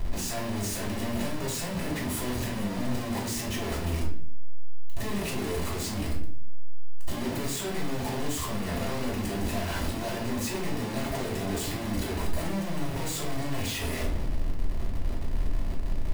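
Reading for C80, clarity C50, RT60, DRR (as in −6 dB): 9.5 dB, 5.5 dB, 0.50 s, −4.5 dB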